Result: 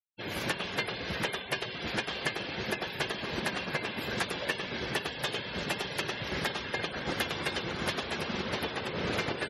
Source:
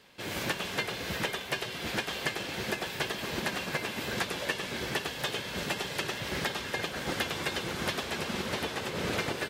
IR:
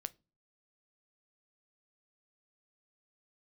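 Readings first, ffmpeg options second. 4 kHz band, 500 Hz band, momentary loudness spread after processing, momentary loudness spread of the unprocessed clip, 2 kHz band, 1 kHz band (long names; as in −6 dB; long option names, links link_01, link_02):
−0.5 dB, 0.0 dB, 2 LU, 2 LU, 0.0 dB, 0.0 dB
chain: -af "aexciter=amount=1.4:drive=3.9:freq=10000,afftfilt=real='re*gte(hypot(re,im),0.01)':imag='im*gte(hypot(re,im),0.01)':win_size=1024:overlap=0.75"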